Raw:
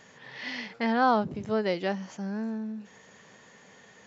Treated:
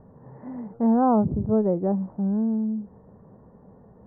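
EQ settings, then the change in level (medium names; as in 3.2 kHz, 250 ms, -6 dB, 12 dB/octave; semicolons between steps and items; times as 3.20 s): inverse Chebyshev low-pass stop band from 2.8 kHz, stop band 50 dB; tilt EQ -4 dB/octave; peaking EQ 63 Hz +6.5 dB 0.88 oct; 0.0 dB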